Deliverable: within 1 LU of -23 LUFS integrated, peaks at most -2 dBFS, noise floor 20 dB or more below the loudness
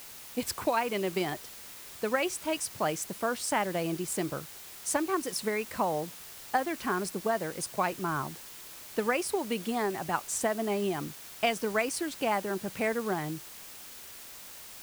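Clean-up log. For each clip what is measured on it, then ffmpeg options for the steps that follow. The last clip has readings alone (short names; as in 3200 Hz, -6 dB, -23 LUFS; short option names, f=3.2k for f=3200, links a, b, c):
noise floor -47 dBFS; noise floor target -52 dBFS; loudness -31.5 LUFS; peak -14.0 dBFS; loudness target -23.0 LUFS
-> -af "afftdn=nr=6:nf=-47"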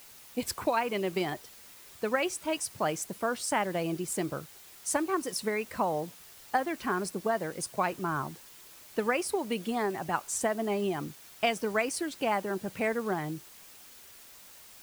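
noise floor -52 dBFS; loudness -32.0 LUFS; peak -14.0 dBFS; loudness target -23.0 LUFS
-> -af "volume=9dB"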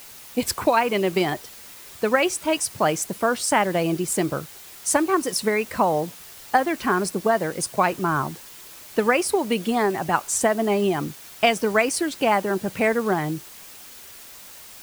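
loudness -23.0 LUFS; peak -5.0 dBFS; noise floor -43 dBFS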